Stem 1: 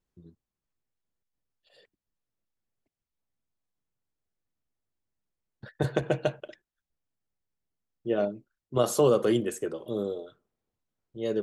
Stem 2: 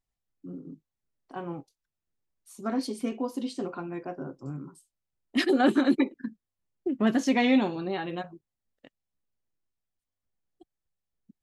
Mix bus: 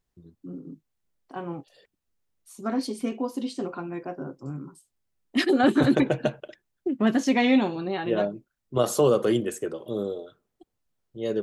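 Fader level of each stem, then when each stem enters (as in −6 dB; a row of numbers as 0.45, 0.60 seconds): +1.5, +2.0 decibels; 0.00, 0.00 seconds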